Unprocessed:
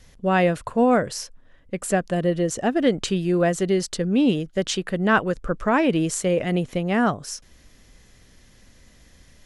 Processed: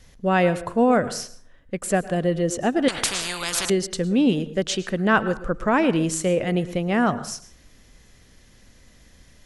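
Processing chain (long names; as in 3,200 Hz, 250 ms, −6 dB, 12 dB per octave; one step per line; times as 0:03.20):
dense smooth reverb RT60 0.52 s, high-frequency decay 0.6×, pre-delay 95 ms, DRR 15 dB
0:02.88–0:03.70: every bin compressed towards the loudest bin 10 to 1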